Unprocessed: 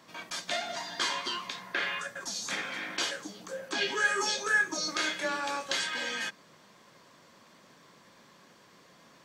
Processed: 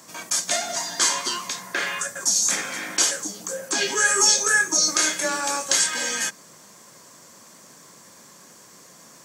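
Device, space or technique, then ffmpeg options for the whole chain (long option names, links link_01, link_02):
budget condenser microphone: -af "highpass=60,highshelf=frequency=5100:width_type=q:width=1.5:gain=12,volume=6.5dB"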